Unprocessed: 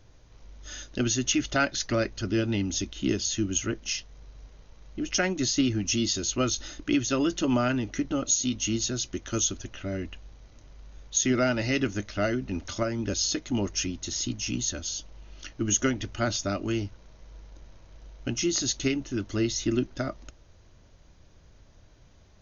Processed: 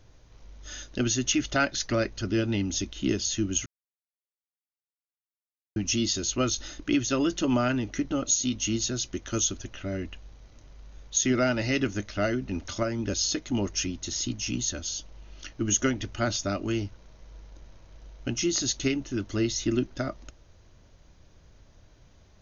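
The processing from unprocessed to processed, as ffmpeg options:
ffmpeg -i in.wav -filter_complex "[0:a]asplit=3[link_01][link_02][link_03];[link_01]atrim=end=3.66,asetpts=PTS-STARTPTS,afade=type=out:start_time=3.656:duration=0.004:curve=hsin[link_04];[link_02]atrim=start=3.66:end=5.76,asetpts=PTS-STARTPTS,volume=0[link_05];[link_03]atrim=start=5.76,asetpts=PTS-STARTPTS,afade=type=in:duration=0.004:curve=hsin[link_06];[link_04][link_05][link_06]concat=n=3:v=0:a=1" out.wav

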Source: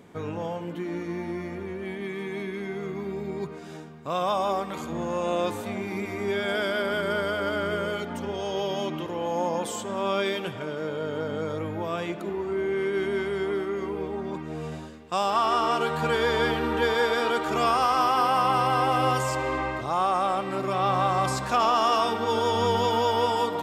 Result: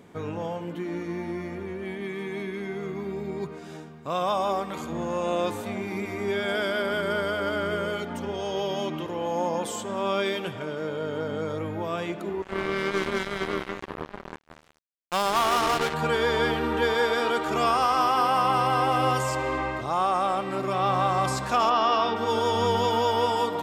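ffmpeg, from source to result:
ffmpeg -i in.wav -filter_complex "[0:a]asettb=1/sr,asplit=3[link_01][link_02][link_03];[link_01]atrim=end=12.424[link_04];[link_02]atrim=start=12.42:end=15.94,asetpts=PTS-STARTPTS,afade=type=in:duration=0.004:curve=qsin,afade=type=out:start_time=3.516:duration=0.004:curve=qsin,acrusher=bits=3:mix=0:aa=0.5[link_05];[link_03]atrim=start=15.936[link_06];[link_04][link_05]acrossfade=duration=0.004:curve1=hsin:curve2=qsin[link_07];[link_07][link_06]acrossfade=duration=0.004:curve1=qsin:curve2=hsin,asplit=3[link_08][link_09][link_10];[link_08]afade=type=out:start_time=21.69:duration=0.02[link_11];[link_09]lowpass=frequency=5000:width=0.5412,lowpass=frequency=5000:width=1.3066,afade=type=in:start_time=21.69:duration=0.02,afade=type=out:start_time=22.15:duration=0.02[link_12];[link_10]afade=type=in:start_time=22.15:duration=0.02[link_13];[link_11][link_12][link_13]amix=inputs=3:normalize=0" out.wav

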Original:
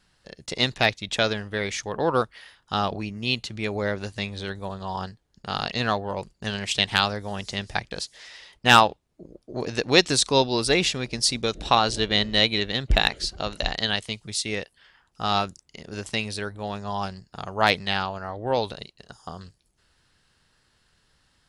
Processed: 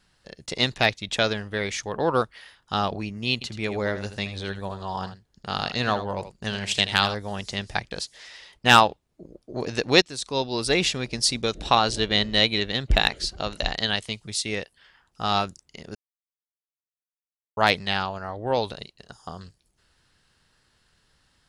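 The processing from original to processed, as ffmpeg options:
ffmpeg -i in.wav -filter_complex "[0:a]asettb=1/sr,asplit=3[link_01][link_02][link_03];[link_01]atrim=end=3.334[link_04];[link_02]atrim=start=3.33:end=7.15,asetpts=PTS-STARTPTS,afade=type=in:duration=0.004:curve=qsin,afade=type=out:start_time=3.816:duration=0.004:curve=qsin,aecho=1:1:81:0.266,atrim=end_sample=168462[link_05];[link_03]atrim=start=7.146[link_06];[link_04][link_05]acrossfade=duration=0.004:curve1=hsin:curve2=qsin[link_07];[link_07][link_06]acrossfade=duration=0.004:curve1=qsin:curve2=hsin,asplit=4[link_08][link_09][link_10][link_11];[link_08]atrim=end=10.02,asetpts=PTS-STARTPTS,afade=type=out:start_time=10.016:duration=0.004:curve=hsin:silence=0.0891251[link_12];[link_09]atrim=start=10.02:end=15.95,asetpts=PTS-STARTPTS,afade=type=in:duration=0.82:silence=0.0891251,afade=type=out:start_time=5.926:duration=0.004:curve=hsin[link_13];[link_10]atrim=start=15.95:end=17.57,asetpts=PTS-STARTPTS,volume=0[link_14];[link_11]atrim=start=17.57,asetpts=PTS-STARTPTS,afade=type=in:duration=0.004:curve=hsin[link_15];[link_12][link_13][link_14][link_15]concat=n=4:v=0:a=1" out.wav

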